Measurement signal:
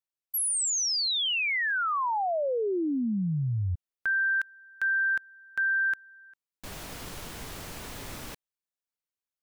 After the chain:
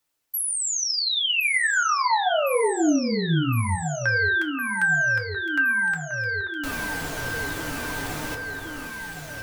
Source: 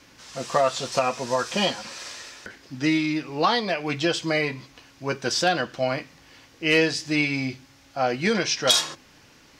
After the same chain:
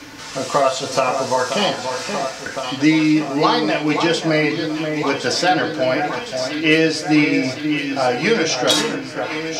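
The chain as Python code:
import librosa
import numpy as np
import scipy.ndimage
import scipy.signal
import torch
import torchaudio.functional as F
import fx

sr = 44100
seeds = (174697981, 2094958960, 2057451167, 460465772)

y = fx.echo_alternate(x, sr, ms=531, hz=1900.0, feedback_pct=80, wet_db=-8.5)
y = fx.rev_fdn(y, sr, rt60_s=0.37, lf_ratio=0.7, hf_ratio=0.55, size_ms=20.0, drr_db=2.0)
y = fx.band_squash(y, sr, depth_pct=40)
y = F.gain(torch.from_numpy(y), 3.5).numpy()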